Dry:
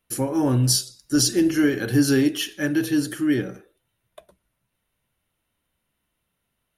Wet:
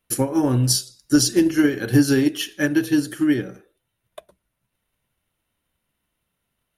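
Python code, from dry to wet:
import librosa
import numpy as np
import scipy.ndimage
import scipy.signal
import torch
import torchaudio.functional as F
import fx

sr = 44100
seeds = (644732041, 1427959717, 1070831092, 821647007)

y = fx.transient(x, sr, attack_db=6, sustain_db=-2)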